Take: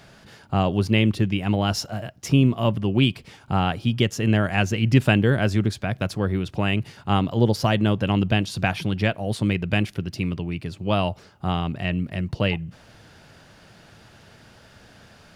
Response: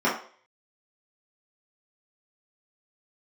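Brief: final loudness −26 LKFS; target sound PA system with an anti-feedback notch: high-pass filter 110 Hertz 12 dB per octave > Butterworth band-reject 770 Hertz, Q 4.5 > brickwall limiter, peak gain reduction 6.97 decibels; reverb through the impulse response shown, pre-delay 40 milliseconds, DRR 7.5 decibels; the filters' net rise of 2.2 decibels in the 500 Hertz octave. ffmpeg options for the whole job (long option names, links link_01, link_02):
-filter_complex "[0:a]equalizer=frequency=500:width_type=o:gain=3,asplit=2[link_01][link_02];[1:a]atrim=start_sample=2205,adelay=40[link_03];[link_02][link_03]afir=irnorm=-1:irlink=0,volume=-23.5dB[link_04];[link_01][link_04]amix=inputs=2:normalize=0,highpass=110,asuperstop=centerf=770:order=8:qfactor=4.5,volume=-2dB,alimiter=limit=-12.5dB:level=0:latency=1"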